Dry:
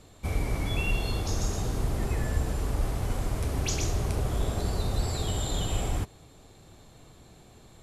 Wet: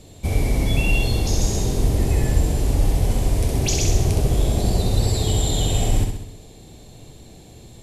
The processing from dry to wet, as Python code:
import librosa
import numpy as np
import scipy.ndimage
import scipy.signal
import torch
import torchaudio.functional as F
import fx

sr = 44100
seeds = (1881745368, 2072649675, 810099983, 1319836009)

y = fx.peak_eq(x, sr, hz=1300.0, db=-12.5, octaves=1.0)
y = fx.room_flutter(y, sr, wall_m=11.1, rt60_s=0.74)
y = y * 10.0 ** (8.5 / 20.0)